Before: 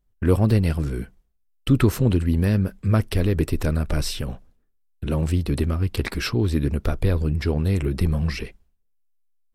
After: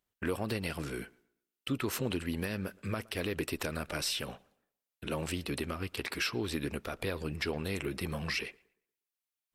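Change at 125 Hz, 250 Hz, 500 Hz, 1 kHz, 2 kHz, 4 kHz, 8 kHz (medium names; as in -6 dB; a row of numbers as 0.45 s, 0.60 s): -19.5 dB, -13.5 dB, -10.0 dB, -6.5 dB, -3.0 dB, -3.0 dB, -3.5 dB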